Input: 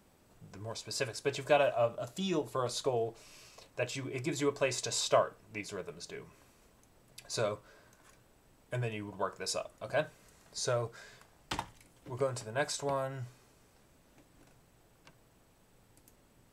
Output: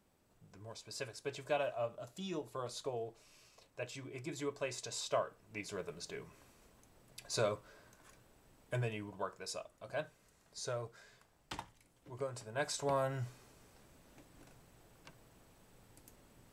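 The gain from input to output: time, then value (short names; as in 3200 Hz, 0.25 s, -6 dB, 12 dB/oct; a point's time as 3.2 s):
5.09 s -8.5 dB
5.85 s -1 dB
8.75 s -1 dB
9.49 s -8 dB
12.31 s -8 dB
13.09 s +1.5 dB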